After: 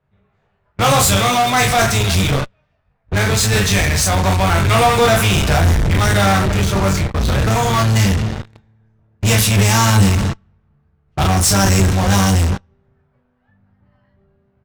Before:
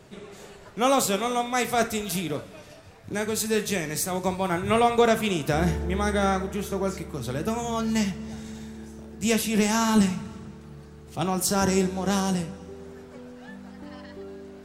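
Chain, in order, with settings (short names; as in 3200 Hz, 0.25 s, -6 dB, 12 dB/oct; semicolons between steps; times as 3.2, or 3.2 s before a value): octaver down 1 oct, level +2 dB; bell 320 Hz -13.5 dB 1.3 oct; gate -35 dBFS, range -18 dB; on a send: early reflections 21 ms -4.5 dB, 36 ms -4.5 dB; on the sum: low-pass opened by the level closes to 1800 Hz, open at -18 dBFS; in parallel at -4 dB: fuzz box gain 40 dB, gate -42 dBFS; on the sum: gain +1.5 dB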